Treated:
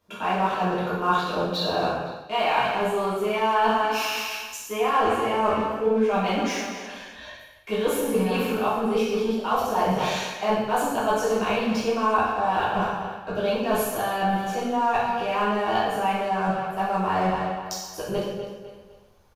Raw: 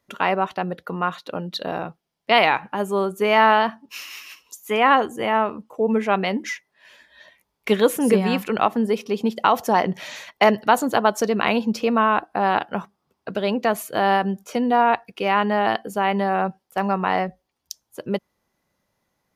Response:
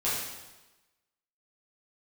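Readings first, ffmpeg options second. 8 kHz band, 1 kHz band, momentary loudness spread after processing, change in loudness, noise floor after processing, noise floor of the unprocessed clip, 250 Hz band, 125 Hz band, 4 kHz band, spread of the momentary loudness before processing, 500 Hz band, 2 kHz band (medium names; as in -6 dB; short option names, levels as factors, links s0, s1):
+1.0 dB, -2.5 dB, 9 LU, -3.5 dB, -45 dBFS, -76 dBFS, -3.5 dB, -1.0 dB, -2.0 dB, 15 LU, -2.0 dB, -4.5 dB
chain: -filter_complex "[0:a]aecho=1:1:253|506|759:0.141|0.048|0.0163,areverse,acompressor=threshold=0.0447:ratio=16,areverse,asubboost=boost=7.5:cutoff=68,asplit=2[s0][s1];[s1]aeval=exprs='0.0126*(abs(mod(val(0)/0.0126+3,4)-2)-1)':c=same,volume=0.266[s2];[s0][s2]amix=inputs=2:normalize=0,highshelf=f=5900:g=-4.5,bandreject=f=2000:w=6.2[s3];[1:a]atrim=start_sample=2205,afade=t=out:st=0.42:d=0.01,atrim=end_sample=18963[s4];[s3][s4]afir=irnorm=-1:irlink=0"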